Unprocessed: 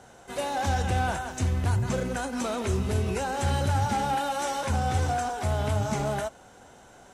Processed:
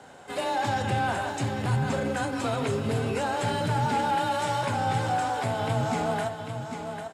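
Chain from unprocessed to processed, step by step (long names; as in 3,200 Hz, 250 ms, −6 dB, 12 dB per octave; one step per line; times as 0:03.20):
low-shelf EQ 82 Hz −8.5 dB
on a send: single-tap delay 797 ms −9.5 dB
on the sum: frequency shifter +26 Hz
in parallel at −1 dB: brickwall limiter −25 dBFS, peak gain reduction 8.5 dB
on the sum: parametric band 12,000 Hz −7.5 dB 1.1 octaves
notch filter 6,000 Hz, Q 5.8
hum removal 54.41 Hz, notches 33
level −1.5 dB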